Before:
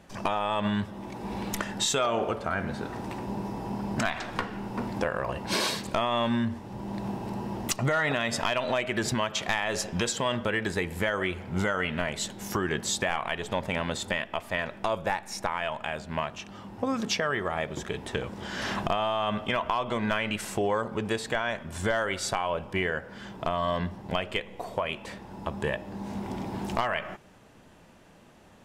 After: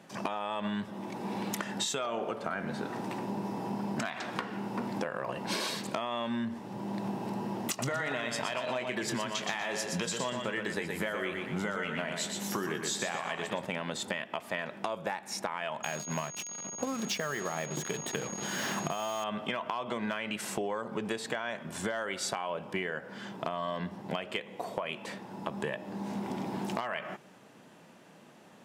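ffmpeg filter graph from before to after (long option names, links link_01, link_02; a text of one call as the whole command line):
ffmpeg -i in.wav -filter_complex "[0:a]asettb=1/sr,asplit=3[link_01][link_02][link_03];[link_01]atrim=end=7.704[link_04];[link_02]atrim=start=7.7:end=13.65,asetpts=PTS-STARTPTS,afade=type=in:duration=0.004:curve=qsin,afade=type=out:start_time=5.946:duration=0.004:curve=qsin,asplit=2[link_05][link_06];[link_06]adelay=24,volume=-12.5dB[link_07];[link_05][link_07]amix=inputs=2:normalize=0,atrim=end_sample=262395,aecho=1:1:120|240|360|480:0.501|0.185|0.0686|0.0254,atrim=end_sample=262395[link_08];[link_03]atrim=start=13.646[link_09];[link_04][link_08]acrossfade=duration=0.004:curve1=hsin:curve2=qsin[link_10];[link_10][link_09]acrossfade=duration=0.004:curve1=qsin:curve2=hsin,asettb=1/sr,asplit=3[link_11][link_12][link_13];[link_11]atrim=end=15.834[link_14];[link_12]atrim=start=15.83:end=19.24,asetpts=PTS-STARTPTS,afade=type=in:duration=0.004:curve=qsin,afade=type=out:start_time=3.406:duration=0.004:curve=qsin,equalizer=frequency=150:width_type=o:width=0.29:gain=6.5,acrusher=bits=5:mix=0:aa=0.5,aeval=exprs='val(0)+0.0112*sin(2*PI*6600*n/s)':channel_layout=same[link_15];[link_13]atrim=start=19.236[link_16];[link_14][link_15]acrossfade=duration=0.004:curve1=hsin:curve2=qsin[link_17];[link_17][link_16]acrossfade=duration=0.004:curve1=qsin:curve2=hsin,highpass=frequency=140:width=0.5412,highpass=frequency=140:width=1.3066,acompressor=threshold=-30dB:ratio=6" out.wav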